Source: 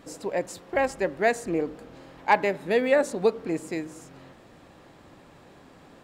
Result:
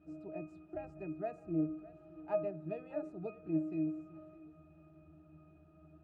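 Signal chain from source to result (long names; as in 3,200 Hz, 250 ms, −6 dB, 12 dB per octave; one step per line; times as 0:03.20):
dynamic equaliser 2,700 Hz, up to −6 dB, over −41 dBFS, Q 0.72
resonances in every octave D#, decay 0.28 s
feedback echo with a high-pass in the loop 612 ms, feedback 38%, high-pass 420 Hz, level −17.5 dB
level +3.5 dB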